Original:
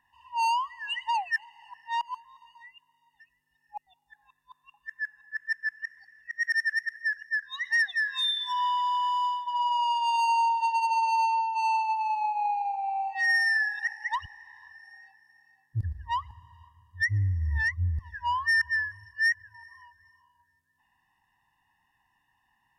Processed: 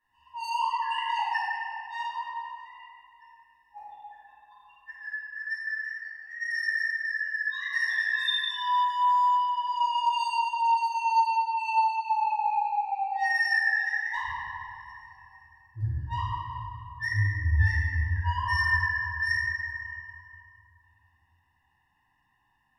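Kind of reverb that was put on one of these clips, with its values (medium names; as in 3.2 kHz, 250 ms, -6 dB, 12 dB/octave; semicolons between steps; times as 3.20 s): simulated room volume 120 m³, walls hard, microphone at 2.4 m; trim -15 dB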